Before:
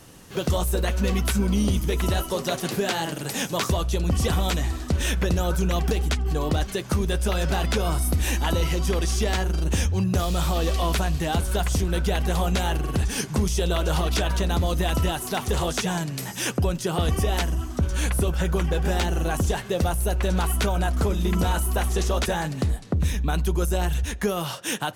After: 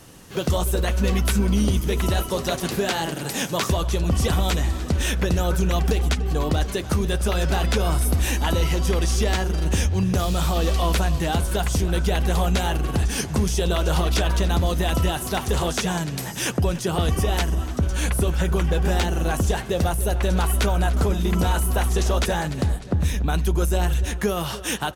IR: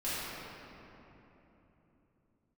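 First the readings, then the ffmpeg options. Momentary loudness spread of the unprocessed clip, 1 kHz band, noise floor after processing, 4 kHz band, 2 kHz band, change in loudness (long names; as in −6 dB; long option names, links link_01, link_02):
3 LU, +1.5 dB, −32 dBFS, +1.5 dB, +1.5 dB, +2.0 dB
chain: -filter_complex "[0:a]asplit=2[link_01][link_02];[link_02]adelay=292,lowpass=frequency=3900:poles=1,volume=-15dB,asplit=2[link_03][link_04];[link_04]adelay=292,lowpass=frequency=3900:poles=1,volume=0.52,asplit=2[link_05][link_06];[link_06]adelay=292,lowpass=frequency=3900:poles=1,volume=0.52,asplit=2[link_07][link_08];[link_08]adelay=292,lowpass=frequency=3900:poles=1,volume=0.52,asplit=2[link_09][link_10];[link_10]adelay=292,lowpass=frequency=3900:poles=1,volume=0.52[link_11];[link_01][link_03][link_05][link_07][link_09][link_11]amix=inputs=6:normalize=0,volume=1.5dB"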